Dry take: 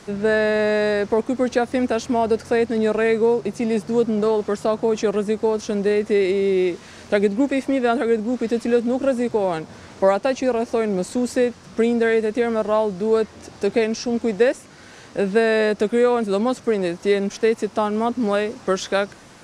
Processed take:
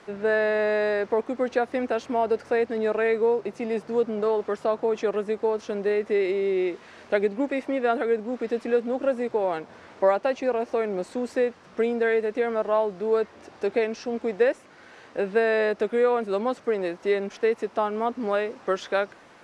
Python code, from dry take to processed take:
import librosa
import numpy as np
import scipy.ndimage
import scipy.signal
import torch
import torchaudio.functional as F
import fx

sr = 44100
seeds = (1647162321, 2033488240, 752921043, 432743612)

y = fx.bass_treble(x, sr, bass_db=-12, treble_db=-13)
y = y * librosa.db_to_amplitude(-3.0)